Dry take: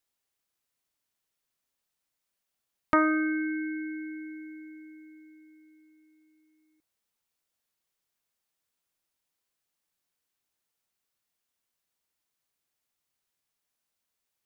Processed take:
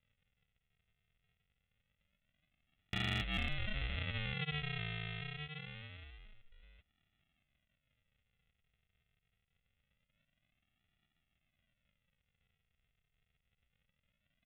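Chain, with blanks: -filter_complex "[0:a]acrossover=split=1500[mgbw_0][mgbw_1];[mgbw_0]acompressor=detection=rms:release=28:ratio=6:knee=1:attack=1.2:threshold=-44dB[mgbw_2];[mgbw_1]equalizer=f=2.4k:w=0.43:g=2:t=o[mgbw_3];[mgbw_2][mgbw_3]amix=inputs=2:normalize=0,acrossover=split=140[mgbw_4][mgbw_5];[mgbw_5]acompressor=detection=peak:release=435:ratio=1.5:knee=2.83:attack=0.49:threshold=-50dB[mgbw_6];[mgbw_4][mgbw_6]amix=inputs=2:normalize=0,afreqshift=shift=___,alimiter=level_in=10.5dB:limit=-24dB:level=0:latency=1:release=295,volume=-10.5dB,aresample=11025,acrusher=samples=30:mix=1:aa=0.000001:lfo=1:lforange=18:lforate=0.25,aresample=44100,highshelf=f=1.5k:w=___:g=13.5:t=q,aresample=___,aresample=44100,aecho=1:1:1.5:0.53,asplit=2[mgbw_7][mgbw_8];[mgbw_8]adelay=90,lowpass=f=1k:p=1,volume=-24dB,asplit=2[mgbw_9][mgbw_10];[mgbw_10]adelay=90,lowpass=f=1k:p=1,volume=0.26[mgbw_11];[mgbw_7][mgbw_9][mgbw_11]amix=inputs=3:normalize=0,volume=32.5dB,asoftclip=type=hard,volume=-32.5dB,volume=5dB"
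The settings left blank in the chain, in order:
140, 1.5, 8000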